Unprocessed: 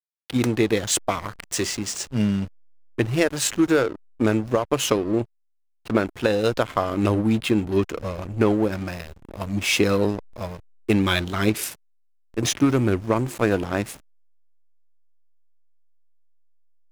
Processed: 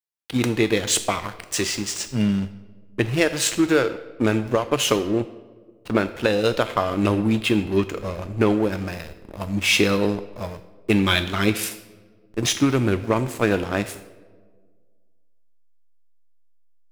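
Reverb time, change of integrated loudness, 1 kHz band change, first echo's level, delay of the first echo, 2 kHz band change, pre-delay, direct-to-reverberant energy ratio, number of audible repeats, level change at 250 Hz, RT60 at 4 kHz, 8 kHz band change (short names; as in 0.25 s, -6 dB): 1.6 s, +1.0 dB, +1.0 dB, none, none, +3.0 dB, 5 ms, 10.5 dB, none, +0.5 dB, 0.80 s, +1.0 dB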